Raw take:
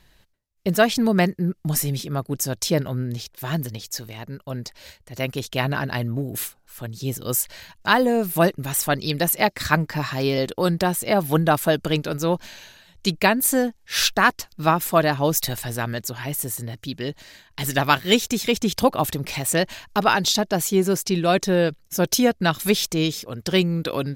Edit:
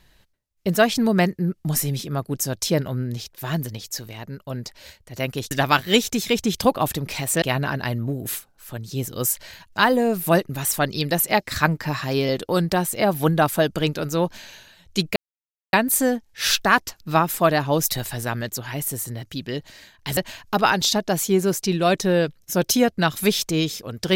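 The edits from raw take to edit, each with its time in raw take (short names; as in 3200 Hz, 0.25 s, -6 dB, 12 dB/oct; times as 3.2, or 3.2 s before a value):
13.25 insert silence 0.57 s
17.69–19.6 move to 5.51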